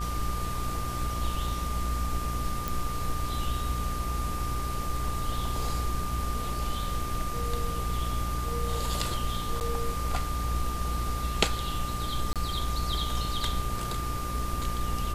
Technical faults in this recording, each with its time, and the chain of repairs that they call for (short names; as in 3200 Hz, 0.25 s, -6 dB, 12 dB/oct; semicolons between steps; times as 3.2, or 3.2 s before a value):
buzz 60 Hz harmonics 30 -34 dBFS
tone 1200 Hz -35 dBFS
2.68 pop
9.6–9.61 gap 9.5 ms
12.33–12.36 gap 27 ms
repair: de-click; notch 1200 Hz, Q 30; de-hum 60 Hz, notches 30; interpolate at 9.6, 9.5 ms; interpolate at 12.33, 27 ms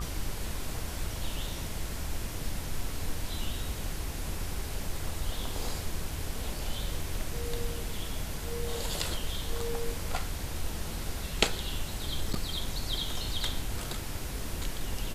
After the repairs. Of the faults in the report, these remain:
none